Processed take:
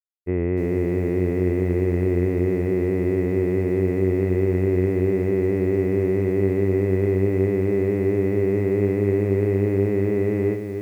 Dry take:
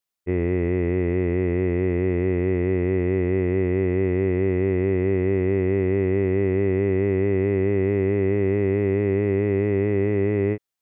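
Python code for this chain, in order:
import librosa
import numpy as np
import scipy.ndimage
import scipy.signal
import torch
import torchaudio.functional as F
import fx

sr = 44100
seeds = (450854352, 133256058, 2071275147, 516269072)

y = fx.high_shelf(x, sr, hz=2600.0, db=-9.0)
y = fx.quant_dither(y, sr, seeds[0], bits=12, dither='none')
y = fx.echo_crushed(y, sr, ms=300, feedback_pct=35, bits=8, wet_db=-7.0)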